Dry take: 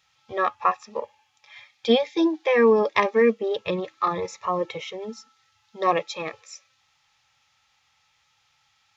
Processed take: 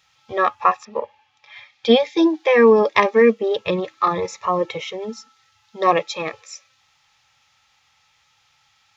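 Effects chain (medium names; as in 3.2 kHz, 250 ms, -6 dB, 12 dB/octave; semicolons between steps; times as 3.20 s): 0.84–1.94 s: low-pass 2.9 kHz -> 6.1 kHz 12 dB/octave; trim +5 dB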